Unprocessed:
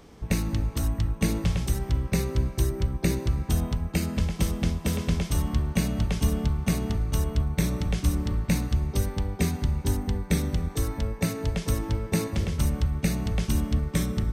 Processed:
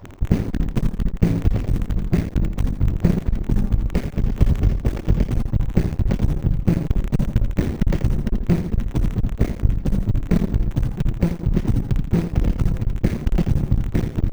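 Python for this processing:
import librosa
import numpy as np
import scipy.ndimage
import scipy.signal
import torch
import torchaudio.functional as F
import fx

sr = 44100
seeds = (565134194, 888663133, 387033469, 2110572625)

p1 = fx.hpss_only(x, sr, part='percussive')
p2 = fx.riaa(p1, sr, side='playback')
p3 = fx.over_compress(p2, sr, threshold_db=-20.0, ratio=-0.5)
p4 = p2 + F.gain(torch.from_numpy(p3), 0.5).numpy()
p5 = fx.dmg_crackle(p4, sr, seeds[0], per_s=46.0, level_db=-27.0)
p6 = p5 + fx.echo_feedback(p5, sr, ms=83, feedback_pct=27, wet_db=-8.5, dry=0)
p7 = (np.kron(p6[::2], np.eye(2)[0]) * 2)[:len(p6)]
p8 = fx.running_max(p7, sr, window=9)
y = F.gain(torch.from_numpy(p8), -4.5).numpy()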